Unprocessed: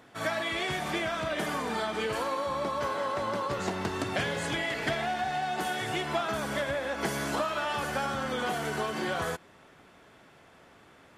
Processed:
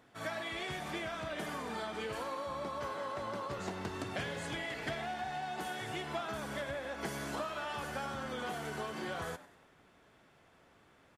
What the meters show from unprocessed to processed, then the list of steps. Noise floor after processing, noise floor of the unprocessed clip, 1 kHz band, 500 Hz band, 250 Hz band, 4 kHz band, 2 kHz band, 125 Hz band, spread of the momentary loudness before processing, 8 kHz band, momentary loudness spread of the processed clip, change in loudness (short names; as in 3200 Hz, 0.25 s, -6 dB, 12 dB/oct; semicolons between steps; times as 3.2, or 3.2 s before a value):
-65 dBFS, -57 dBFS, -8.5 dB, -8.5 dB, -7.5 dB, -8.5 dB, -8.5 dB, -7.0 dB, 2 LU, -8.5 dB, 1 LU, -8.0 dB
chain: low shelf 100 Hz +4.5 dB; frequency-shifting echo 97 ms, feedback 46%, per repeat +100 Hz, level -17 dB; gain -8.5 dB